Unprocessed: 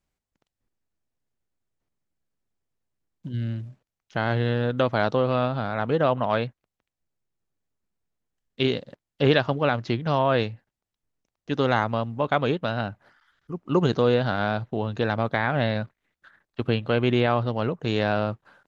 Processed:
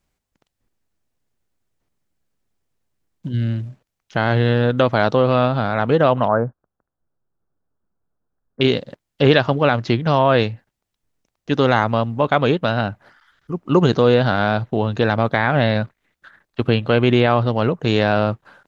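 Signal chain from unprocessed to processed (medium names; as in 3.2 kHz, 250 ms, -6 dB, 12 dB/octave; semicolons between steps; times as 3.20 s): in parallel at -3 dB: peak limiter -13.5 dBFS, peak gain reduction 6.5 dB; 6.28–8.61 s: on the sum: elliptic low-pass 1.5 kHz, stop band 50 dB; trim +3 dB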